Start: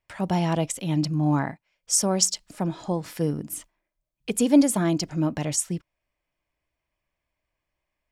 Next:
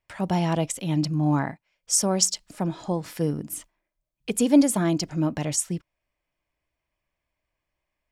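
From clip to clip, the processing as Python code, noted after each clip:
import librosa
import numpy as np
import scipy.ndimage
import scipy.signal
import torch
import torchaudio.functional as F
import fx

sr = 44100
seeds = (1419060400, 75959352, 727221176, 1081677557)

y = x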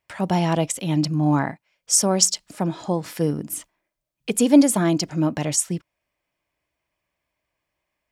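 y = fx.highpass(x, sr, hz=110.0, slope=6)
y = F.gain(torch.from_numpy(y), 4.0).numpy()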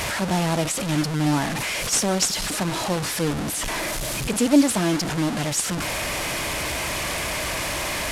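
y = fx.delta_mod(x, sr, bps=64000, step_db=-18.0)
y = F.gain(torch.from_numpy(y), -2.5).numpy()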